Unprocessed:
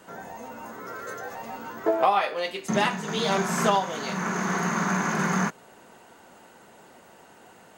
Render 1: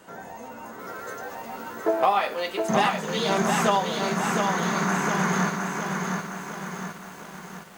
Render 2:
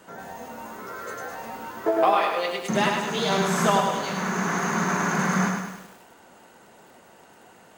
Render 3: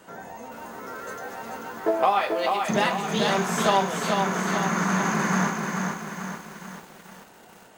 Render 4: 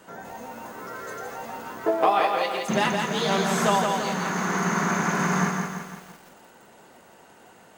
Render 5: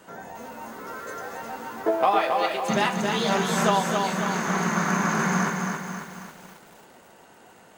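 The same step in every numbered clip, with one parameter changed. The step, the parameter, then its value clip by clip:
feedback echo at a low word length, delay time: 713, 103, 438, 168, 272 milliseconds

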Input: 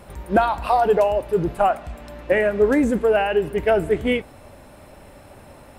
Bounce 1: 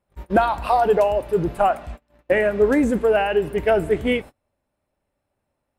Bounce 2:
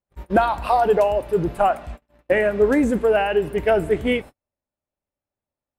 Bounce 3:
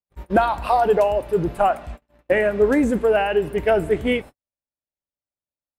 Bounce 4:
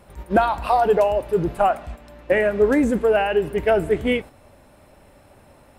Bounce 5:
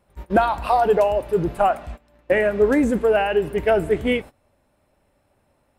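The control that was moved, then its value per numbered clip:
noise gate, range: −32, −46, −58, −6, −20 decibels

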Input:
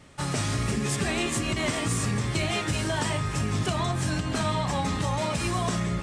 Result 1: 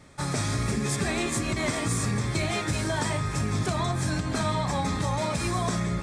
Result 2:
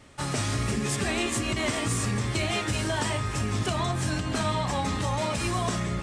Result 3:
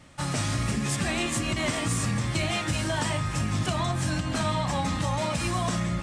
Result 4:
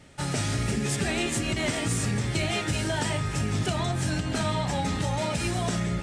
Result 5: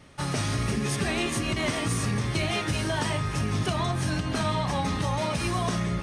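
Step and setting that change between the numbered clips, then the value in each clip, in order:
notch filter, centre frequency: 2,900, 160, 410, 1,100, 7,500 Hertz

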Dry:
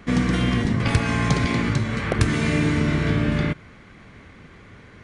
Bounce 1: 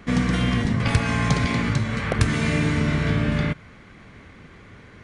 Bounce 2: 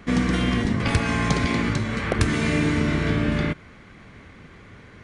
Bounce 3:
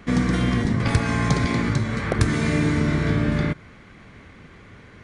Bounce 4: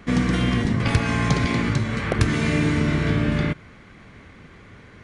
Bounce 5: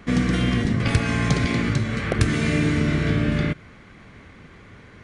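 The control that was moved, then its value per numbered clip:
dynamic equaliser, frequency: 340, 130, 2,800, 8,600, 940 Hertz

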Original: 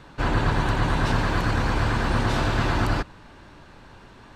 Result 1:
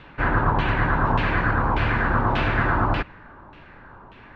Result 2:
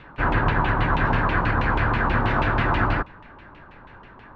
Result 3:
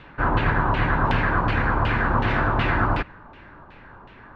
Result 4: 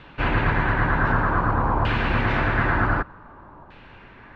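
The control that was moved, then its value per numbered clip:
auto-filter low-pass, speed: 1.7, 6.2, 2.7, 0.54 Hertz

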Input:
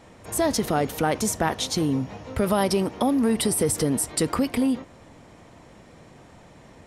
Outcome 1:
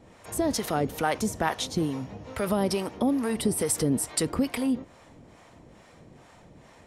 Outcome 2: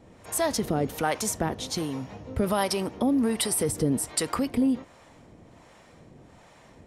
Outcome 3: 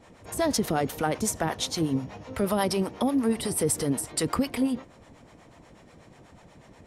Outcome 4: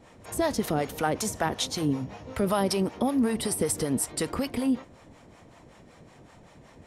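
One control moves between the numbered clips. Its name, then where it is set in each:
two-band tremolo in antiphase, speed: 2.3, 1.3, 8.2, 5.3 Hertz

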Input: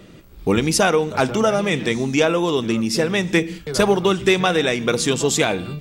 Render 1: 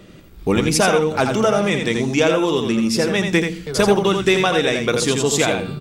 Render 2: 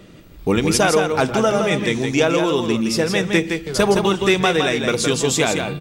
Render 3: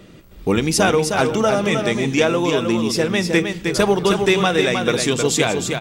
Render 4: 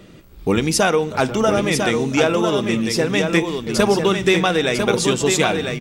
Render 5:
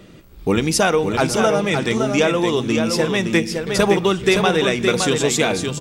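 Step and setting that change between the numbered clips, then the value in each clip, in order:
single-tap delay, delay time: 84, 165, 312, 999, 566 milliseconds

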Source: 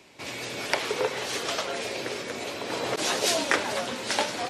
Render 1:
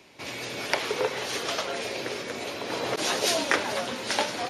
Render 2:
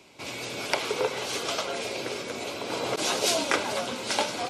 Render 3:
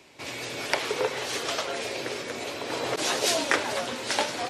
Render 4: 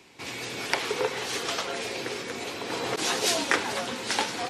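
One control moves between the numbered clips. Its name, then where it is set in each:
notch filter, centre frequency: 7,800, 1,800, 200, 600 Hertz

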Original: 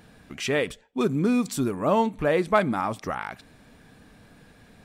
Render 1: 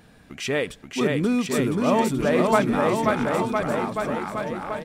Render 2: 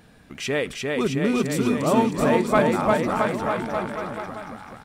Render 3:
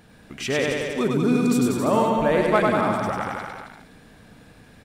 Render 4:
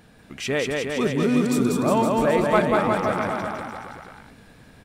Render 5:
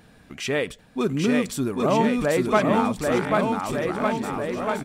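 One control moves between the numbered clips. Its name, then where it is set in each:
bouncing-ball delay, first gap: 530, 350, 100, 190, 790 milliseconds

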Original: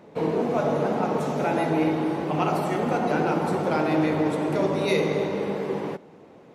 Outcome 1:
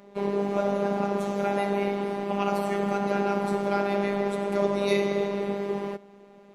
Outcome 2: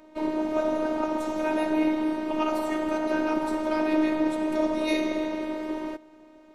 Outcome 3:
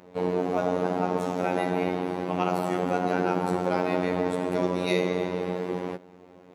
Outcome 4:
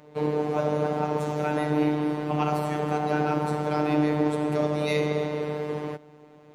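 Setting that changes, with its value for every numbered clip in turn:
phases set to zero, frequency: 200, 310, 90, 150 Hertz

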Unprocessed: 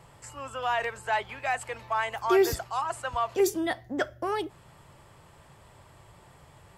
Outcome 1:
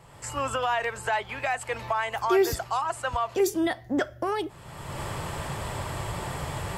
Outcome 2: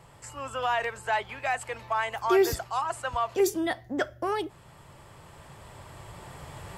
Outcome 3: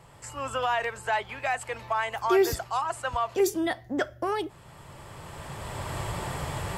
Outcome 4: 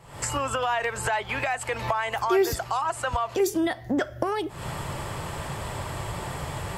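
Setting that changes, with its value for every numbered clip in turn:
camcorder AGC, rising by: 32, 5, 13, 85 dB per second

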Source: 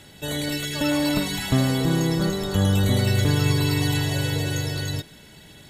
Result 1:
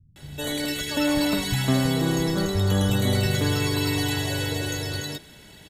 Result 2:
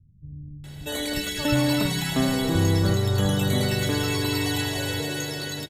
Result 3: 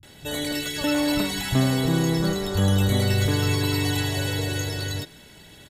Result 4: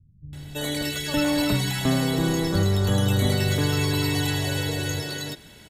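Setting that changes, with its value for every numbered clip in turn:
multiband delay without the direct sound, delay time: 160, 640, 30, 330 milliseconds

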